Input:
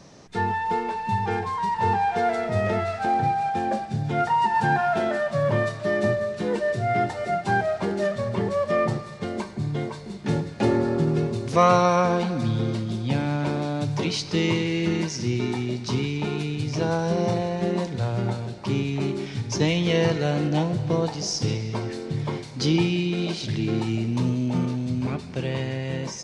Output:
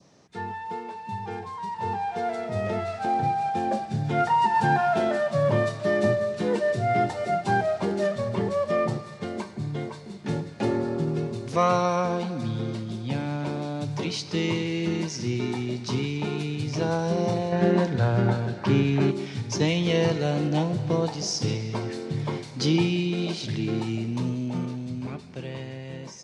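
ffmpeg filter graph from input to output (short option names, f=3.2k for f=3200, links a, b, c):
-filter_complex "[0:a]asettb=1/sr,asplit=3[a][b][c];[a]atrim=end=17.524[d];[b]atrim=start=17.52:end=19.11,asetpts=PTS-STARTPTS,afade=t=in:d=0.004:c=qsin,afade=t=out:st=1.586:d=0.004:c=qsin,lowpass=f=3k:p=1,equalizer=f=1.6k:t=o:w=0.3:g=11.5,acontrast=38[e];[c]atrim=start=19.106[f];[d][e]acrossfade=d=0.004:c1=hsin:c2=qsin[g];[g][f]acrossfade=d=0.004:c1=qsin:c2=hsin,highpass=85,adynamicequalizer=threshold=0.0112:dfrequency=1700:dqfactor=1.5:tfrequency=1700:tqfactor=1.5:attack=5:release=100:ratio=0.375:range=2:mode=cutabove:tftype=bell,dynaudnorm=f=520:g=11:m=11.5dB,volume=-8.5dB"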